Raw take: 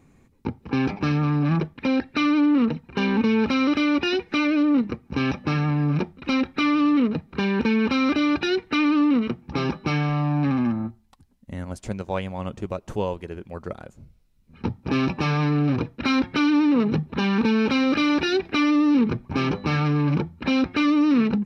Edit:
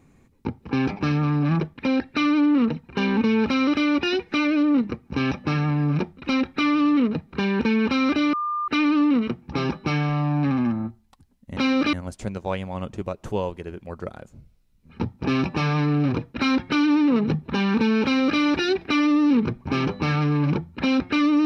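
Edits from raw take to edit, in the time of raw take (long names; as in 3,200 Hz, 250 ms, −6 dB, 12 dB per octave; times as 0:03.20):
0:08.33–0:08.68: beep over 1,200 Hz −23 dBFS
0:17.68–0:18.04: duplicate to 0:11.57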